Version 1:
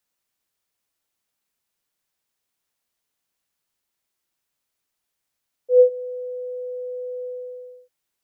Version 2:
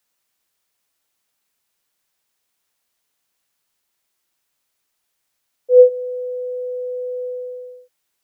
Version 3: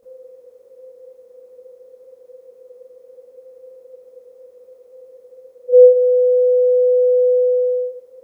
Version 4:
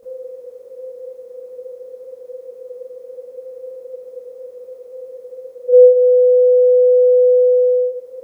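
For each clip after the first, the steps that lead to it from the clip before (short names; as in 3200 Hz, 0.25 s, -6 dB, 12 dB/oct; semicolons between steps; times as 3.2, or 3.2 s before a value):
low shelf 380 Hz -4.5 dB; gain +6.5 dB
per-bin compression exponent 0.4; reverb RT60 0.35 s, pre-delay 22 ms, DRR -8.5 dB; gain -9 dB
compressor 1.5:1, threshold -32 dBFS, peak gain reduction 10 dB; bell 490 Hz +4 dB 0.27 oct; gain +6 dB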